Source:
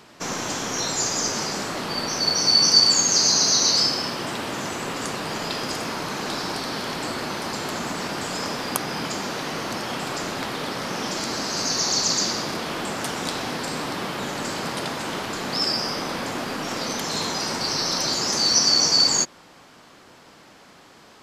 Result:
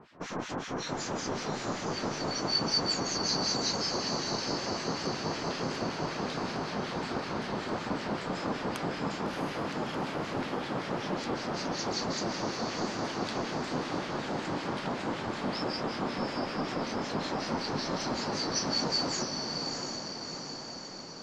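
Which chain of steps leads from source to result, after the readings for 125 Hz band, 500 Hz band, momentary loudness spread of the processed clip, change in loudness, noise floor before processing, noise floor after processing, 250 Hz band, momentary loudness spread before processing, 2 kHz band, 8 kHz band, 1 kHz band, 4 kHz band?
-2.5 dB, -3.5 dB, 6 LU, -10.5 dB, -50 dBFS, -41 dBFS, -3.0 dB, 13 LU, -8.0 dB, -16.5 dB, -5.5 dB, -12.5 dB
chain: harmonic tremolo 5.3 Hz, depth 100%, crossover 1.5 kHz; tape spacing loss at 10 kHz 23 dB; on a send: echo that smears into a reverb 681 ms, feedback 61%, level -4.5 dB

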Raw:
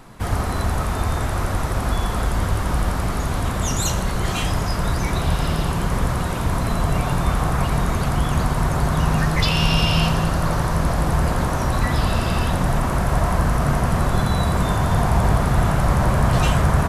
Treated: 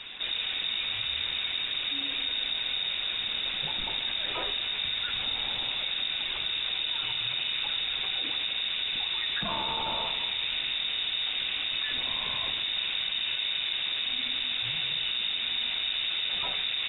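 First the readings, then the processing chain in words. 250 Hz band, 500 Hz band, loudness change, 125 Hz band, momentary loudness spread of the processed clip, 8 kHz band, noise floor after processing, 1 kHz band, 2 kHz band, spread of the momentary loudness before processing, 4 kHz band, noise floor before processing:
-25.5 dB, -20.5 dB, -7.0 dB, -33.0 dB, 1 LU, under -40 dB, -34 dBFS, -17.5 dB, -5.5 dB, 5 LU, +6.0 dB, -24 dBFS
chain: peak limiter -11.5 dBFS, peak gain reduction 7 dB; peaking EQ 590 Hz -6 dB 0.36 oct; feedback comb 740 Hz, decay 0.45 s, mix 70%; frequency inversion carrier 3.7 kHz; distance through air 310 m; level flattener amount 50%; trim +4 dB

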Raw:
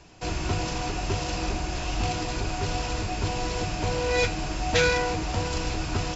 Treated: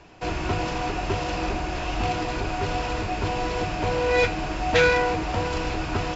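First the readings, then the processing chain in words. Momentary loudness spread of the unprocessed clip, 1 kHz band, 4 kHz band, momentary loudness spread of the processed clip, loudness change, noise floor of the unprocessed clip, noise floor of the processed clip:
7 LU, +4.5 dB, -1.0 dB, 8 LU, +2.5 dB, -32 dBFS, -30 dBFS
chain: tone controls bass -5 dB, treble -12 dB; trim +4.5 dB

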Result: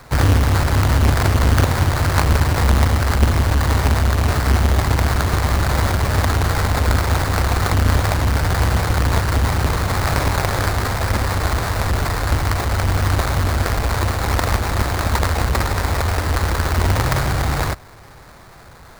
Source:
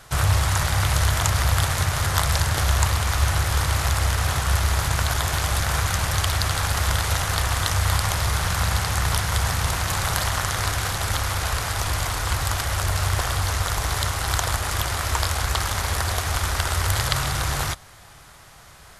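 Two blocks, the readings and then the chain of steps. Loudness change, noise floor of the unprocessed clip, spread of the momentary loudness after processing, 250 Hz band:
+4.5 dB, -47 dBFS, 4 LU, +12.0 dB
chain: square wave that keeps the level; sample-rate reducer 3 kHz, jitter 20%

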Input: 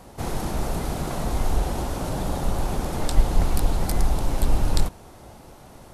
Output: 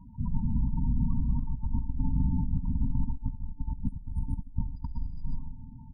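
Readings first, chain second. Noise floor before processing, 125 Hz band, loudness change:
-46 dBFS, -3.0 dB, -6.0 dB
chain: feedback delay 129 ms, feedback 43%, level -10 dB; loudest bins only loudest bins 16; gated-style reverb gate 450 ms rising, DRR 3 dB; compressor with a negative ratio -23 dBFS, ratio -0.5; FFT band-reject 290–880 Hz; feedback comb 360 Hz, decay 0.73 s, mix 40%

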